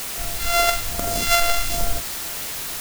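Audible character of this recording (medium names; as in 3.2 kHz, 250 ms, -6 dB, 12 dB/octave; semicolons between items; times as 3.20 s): a buzz of ramps at a fixed pitch in blocks of 64 samples; phasing stages 2, 1.2 Hz, lowest notch 160–2900 Hz; a quantiser's noise floor 6-bit, dither triangular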